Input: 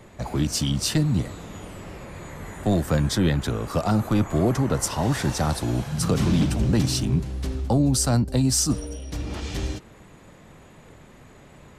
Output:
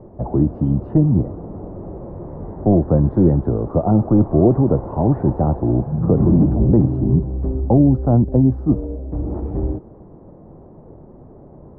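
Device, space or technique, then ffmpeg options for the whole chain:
under water: -af "lowpass=f=820:w=0.5412,lowpass=f=820:w=1.3066,equalizer=f=350:t=o:w=0.44:g=4.5,volume=6.5dB"

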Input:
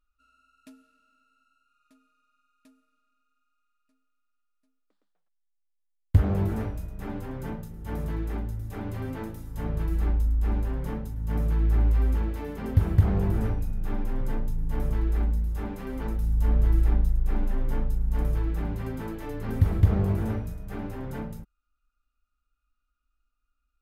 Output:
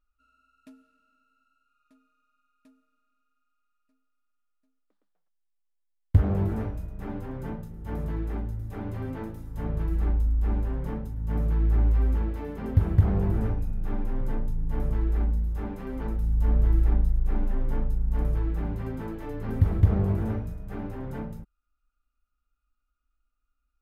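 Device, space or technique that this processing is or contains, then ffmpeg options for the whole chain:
behind a face mask: -af "highshelf=f=2.5k:g=-8"

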